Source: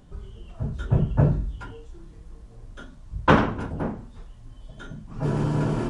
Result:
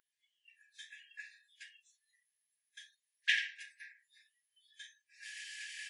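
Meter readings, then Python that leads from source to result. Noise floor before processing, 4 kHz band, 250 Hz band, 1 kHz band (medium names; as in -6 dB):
-47 dBFS, 0.0 dB, under -40 dB, under -40 dB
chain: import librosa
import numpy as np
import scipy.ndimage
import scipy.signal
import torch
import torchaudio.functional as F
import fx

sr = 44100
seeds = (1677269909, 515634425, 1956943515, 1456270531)

y = fx.brickwall_highpass(x, sr, low_hz=1600.0)
y = fx.noise_reduce_blind(y, sr, reduce_db=22)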